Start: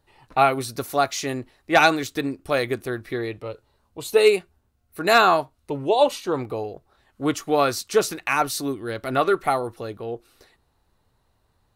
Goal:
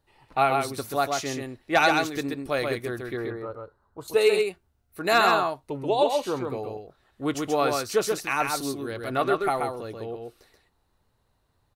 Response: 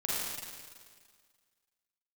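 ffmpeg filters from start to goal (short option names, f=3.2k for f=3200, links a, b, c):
-filter_complex "[0:a]asettb=1/sr,asplit=3[a][b][c];[a]atrim=end=3.174[d];[b]atrim=start=3.17:end=4.08,asetpts=PTS-STARTPTS,afade=t=in:d=0.004:c=qsin,afade=t=out:st=0.906:d=0.004:c=qsin,highshelf=f=1.9k:t=q:w=3:g=-10[e];[c]atrim=start=4.076[f];[d][e]acrossfade=d=0.004:c1=hsin:c2=qsin[g];[g][f]acrossfade=d=0.004:c1=qsin:c2=hsin,aecho=1:1:132:0.631,volume=-4.5dB"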